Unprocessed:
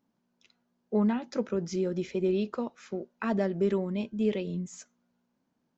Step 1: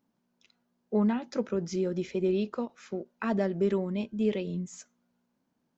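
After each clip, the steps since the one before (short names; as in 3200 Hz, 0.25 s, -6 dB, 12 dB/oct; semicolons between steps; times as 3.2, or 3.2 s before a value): ending taper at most 490 dB/s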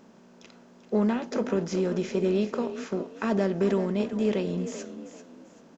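per-bin compression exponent 0.6; frequency-shifting echo 0.39 s, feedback 32%, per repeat +37 Hz, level -11.5 dB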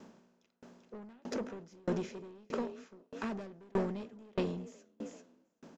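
soft clip -25.5 dBFS, distortion -10 dB; dB-ramp tremolo decaying 1.6 Hz, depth 35 dB; gain +2 dB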